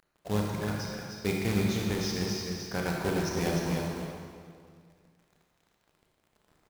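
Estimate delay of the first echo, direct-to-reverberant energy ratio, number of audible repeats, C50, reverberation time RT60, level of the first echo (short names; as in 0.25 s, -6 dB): 0.304 s, -3.0 dB, 1, -2.0 dB, 2.0 s, -5.0 dB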